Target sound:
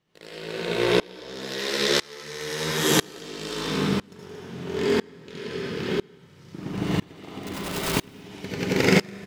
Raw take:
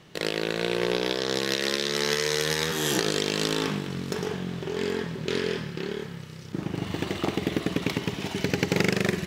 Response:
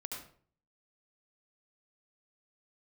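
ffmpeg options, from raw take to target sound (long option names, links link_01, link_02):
-filter_complex "[0:a]asettb=1/sr,asplit=3[link_01][link_02][link_03];[link_01]atrim=end=7.434[link_04];[link_02]atrim=start=7.43:end=7.94,asetpts=PTS-STARTPTS,afade=type=in:duration=0.004:curve=qsin,afade=type=out:start_time=0.506:duration=0.004:curve=qsin,aeval=exprs='(mod(15.8*val(0)+1,2)-1)/15.8':channel_layout=same[link_05];[link_03]atrim=start=7.936[link_06];[link_04][link_05]acrossfade=duration=0.004:curve1=hsin:curve2=qsin[link_07];[link_07][link_06]acrossfade=duration=0.004:curve1=qsin:curve2=hsin,aecho=1:1:172|227.4:0.316|0.316[link_08];[1:a]atrim=start_sample=2205[link_09];[link_08][link_09]afir=irnorm=-1:irlink=0,aeval=exprs='val(0)*pow(10,-28*if(lt(mod(-1*n/s,1),2*abs(-1)/1000),1-mod(-1*n/s,1)/(2*abs(-1)/1000),(mod(-1*n/s,1)-2*abs(-1)/1000)/(1-2*abs(-1)/1000))/20)':channel_layout=same,volume=9dB"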